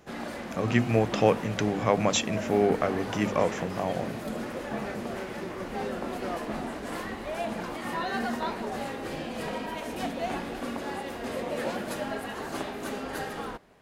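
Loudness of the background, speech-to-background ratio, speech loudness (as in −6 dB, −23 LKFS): −34.5 LKFS, 7.5 dB, −27.0 LKFS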